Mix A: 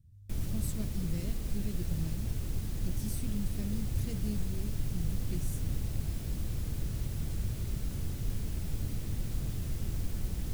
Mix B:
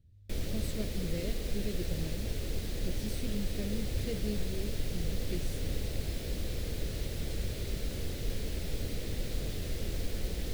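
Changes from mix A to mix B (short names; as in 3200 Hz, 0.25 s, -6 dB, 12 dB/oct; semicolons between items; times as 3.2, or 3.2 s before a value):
speech: add high shelf 4500 Hz -9 dB; master: add graphic EQ 125/500/1000/2000/4000 Hz -6/+12/-4/+6/+8 dB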